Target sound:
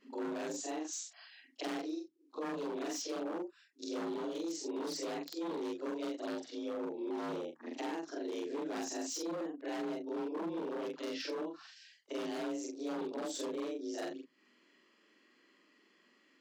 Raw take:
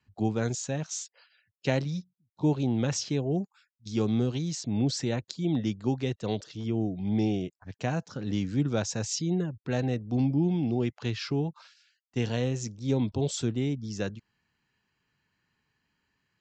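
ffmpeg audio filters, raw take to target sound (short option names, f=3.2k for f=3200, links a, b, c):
-filter_complex "[0:a]afftfilt=real='re':imag='-im':win_size=4096:overlap=0.75,asplit=2[a][b];[b]asoftclip=type=hard:threshold=-24.5dB,volume=-3.5dB[c];[a][c]amix=inputs=2:normalize=0,acrossover=split=130[d][e];[d]acompressor=threshold=-42dB:ratio=1.5[f];[f][e]amix=inputs=2:normalize=0,lowpass=7.6k,acrossover=split=150[g][h];[h]aeval=exprs='0.0398*(abs(mod(val(0)/0.0398+3,4)-2)-1)':c=same[i];[g][i]amix=inputs=2:normalize=0,afreqshift=160,acompressor=threshold=-53dB:ratio=2.5,volume=8dB"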